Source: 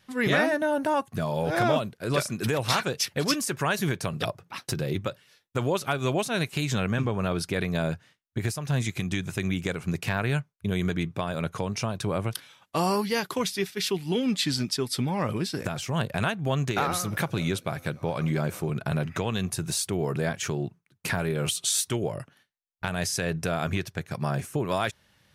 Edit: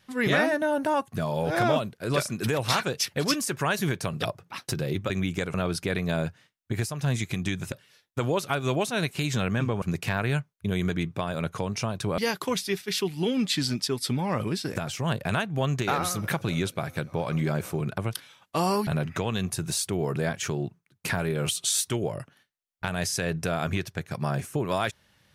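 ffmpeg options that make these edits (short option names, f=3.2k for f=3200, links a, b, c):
-filter_complex "[0:a]asplit=8[a][b][c][d][e][f][g][h];[a]atrim=end=5.102[i];[b]atrim=start=9.378:end=9.822[j];[c]atrim=start=7.198:end=9.382[k];[d]atrim=start=5.098:end=7.202[l];[e]atrim=start=9.818:end=12.182[m];[f]atrim=start=13.068:end=18.872[n];[g]atrim=start=12.178:end=13.072[o];[h]atrim=start=18.868[p];[i][j]acrossfade=d=0.004:c1=hsin:c2=hsin[q];[q][k]acrossfade=d=0.004:c1=hsin:c2=hsin[r];[r][l]acrossfade=d=0.004:c1=hsin:c2=hsin[s];[s][m]acrossfade=d=0.004:c1=hsin:c2=hsin[t];[t][n]acrossfade=d=0.004:c1=hsin:c2=hsin[u];[u][o]acrossfade=d=0.004:c1=hsin:c2=hsin[v];[v][p]acrossfade=d=0.004:c1=hsin:c2=hsin"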